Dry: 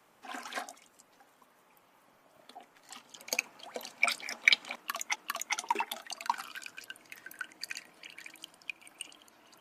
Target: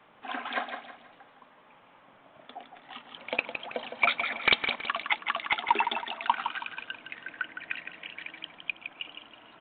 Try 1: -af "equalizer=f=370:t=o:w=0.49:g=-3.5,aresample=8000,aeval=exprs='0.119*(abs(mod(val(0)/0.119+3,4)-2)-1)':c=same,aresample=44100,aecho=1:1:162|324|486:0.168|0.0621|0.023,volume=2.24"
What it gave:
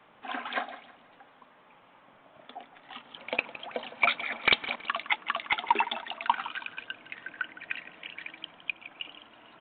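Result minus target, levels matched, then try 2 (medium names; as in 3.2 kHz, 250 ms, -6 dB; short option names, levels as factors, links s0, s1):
echo-to-direct -7.5 dB
-af "equalizer=f=370:t=o:w=0.49:g=-3.5,aresample=8000,aeval=exprs='0.119*(abs(mod(val(0)/0.119+3,4)-2)-1)':c=same,aresample=44100,aecho=1:1:162|324|486|648:0.398|0.147|0.0545|0.0202,volume=2.24"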